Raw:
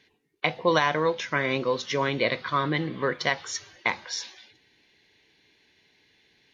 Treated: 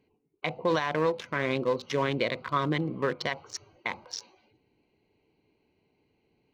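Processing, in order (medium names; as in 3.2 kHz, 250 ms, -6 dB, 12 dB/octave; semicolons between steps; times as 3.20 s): local Wiener filter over 25 samples; peak limiter -16.5 dBFS, peak gain reduction 8.5 dB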